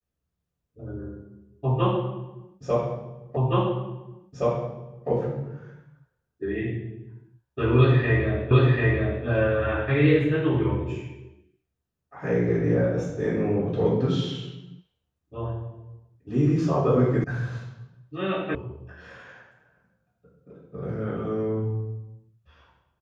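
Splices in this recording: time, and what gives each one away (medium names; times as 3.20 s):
3.37 s: repeat of the last 1.72 s
8.51 s: repeat of the last 0.74 s
17.24 s: sound stops dead
18.55 s: sound stops dead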